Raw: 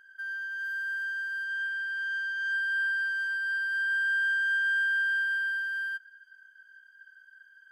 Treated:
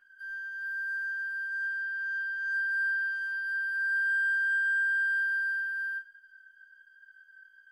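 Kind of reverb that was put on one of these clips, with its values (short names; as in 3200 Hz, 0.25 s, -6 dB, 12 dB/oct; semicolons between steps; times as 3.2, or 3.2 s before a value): shoebox room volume 200 m³, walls furnished, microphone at 3.3 m; gain -10 dB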